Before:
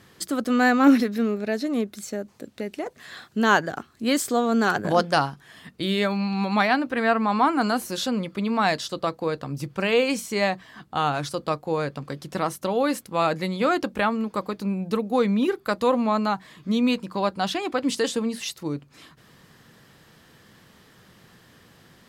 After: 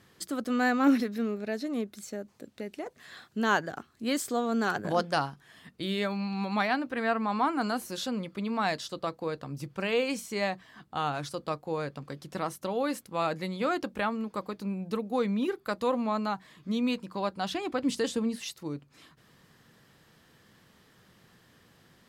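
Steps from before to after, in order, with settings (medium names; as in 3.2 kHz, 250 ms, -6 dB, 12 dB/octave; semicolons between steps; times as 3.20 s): 17.52–18.36 s: bass shelf 210 Hz +9 dB; trim -7 dB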